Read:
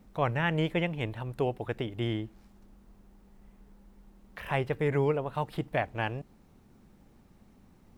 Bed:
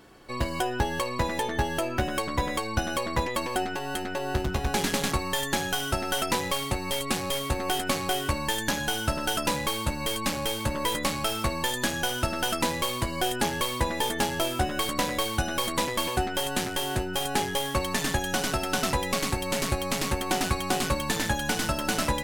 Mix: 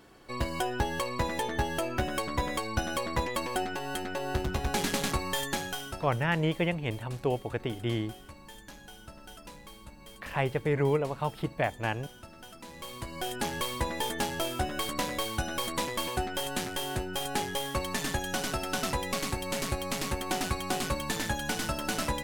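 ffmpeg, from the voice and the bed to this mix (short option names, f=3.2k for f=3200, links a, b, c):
-filter_complex "[0:a]adelay=5850,volume=0.5dB[a];[1:a]volume=14dB,afade=t=out:st=5.37:d=0.79:silence=0.11885,afade=t=in:st=12.64:d=0.95:silence=0.141254[b];[a][b]amix=inputs=2:normalize=0"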